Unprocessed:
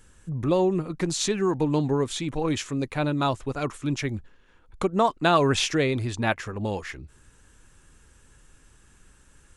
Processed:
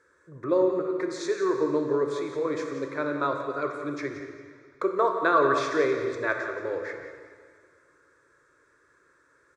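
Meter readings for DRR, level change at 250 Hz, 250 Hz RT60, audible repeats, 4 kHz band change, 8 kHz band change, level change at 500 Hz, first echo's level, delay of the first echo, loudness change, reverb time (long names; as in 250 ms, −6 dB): 3.0 dB, −4.5 dB, 1.9 s, 1, −12.5 dB, −13.0 dB, +1.0 dB, −11.0 dB, 175 ms, −1.5 dB, 2.0 s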